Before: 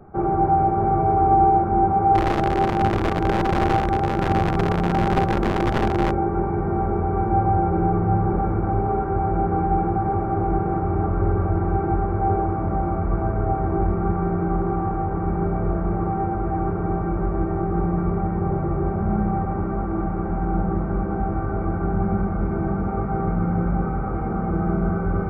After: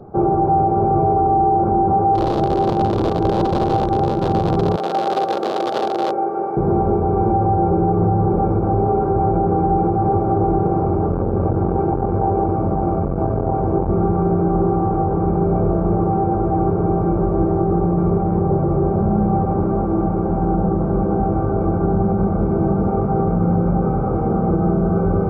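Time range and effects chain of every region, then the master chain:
4.76–6.57 s: high-pass 550 Hz + band-stop 980 Hz, Q 6.7
10.67–13.89 s: peaking EQ 3.8 kHz +11.5 dB 0.51 oct + transformer saturation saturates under 230 Hz
whole clip: ten-band graphic EQ 125 Hz +7 dB, 250 Hz +4 dB, 500 Hz +10 dB, 1 kHz +4 dB, 2 kHz -11 dB, 4 kHz +10 dB; peak limiter -8.5 dBFS

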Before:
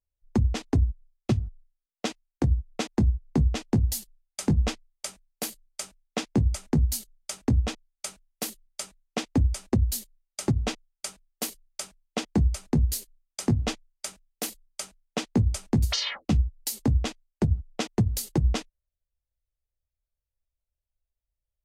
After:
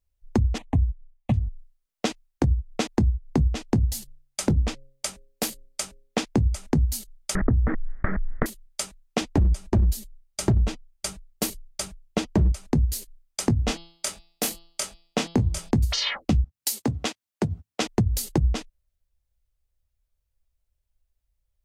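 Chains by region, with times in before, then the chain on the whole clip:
0.58–1.34 s: treble shelf 3.1 kHz -11.5 dB + static phaser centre 1.4 kHz, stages 6
3.78–6.19 s: de-hum 135.4 Hz, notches 4 + loudspeaker Doppler distortion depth 0.43 ms
7.35–8.46 s: comb filter that takes the minimum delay 0.54 ms + Chebyshev low-pass 1.9 kHz, order 5 + level flattener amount 70%
9.21–12.52 s: bass shelf 230 Hz +11 dB + overload inside the chain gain 15 dB + comb of notches 250 Hz
13.66–15.71 s: doubling 24 ms -5 dB + de-hum 168.6 Hz, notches 32
16.44–17.82 s: high-pass 100 Hz 24 dB/octave + bass shelf 310 Hz -9 dB
whole clip: bass shelf 130 Hz +6.5 dB; compression 4:1, threshold -25 dBFS; trim +5.5 dB

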